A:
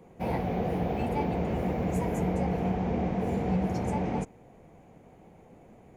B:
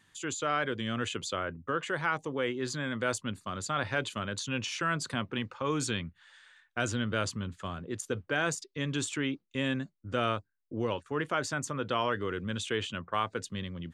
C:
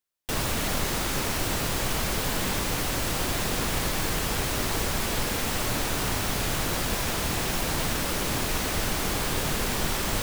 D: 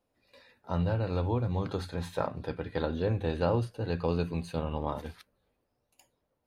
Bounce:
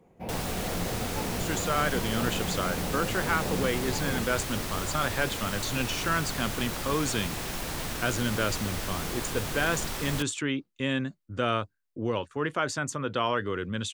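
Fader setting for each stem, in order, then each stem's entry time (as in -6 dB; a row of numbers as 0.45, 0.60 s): -6.5, +2.5, -6.5, -10.5 dB; 0.00, 1.25, 0.00, 0.00 s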